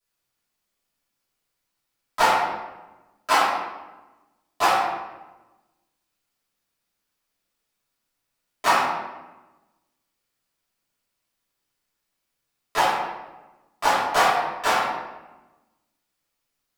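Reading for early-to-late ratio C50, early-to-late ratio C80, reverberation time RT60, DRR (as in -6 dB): -1.0 dB, 1.5 dB, 1.1 s, -13.0 dB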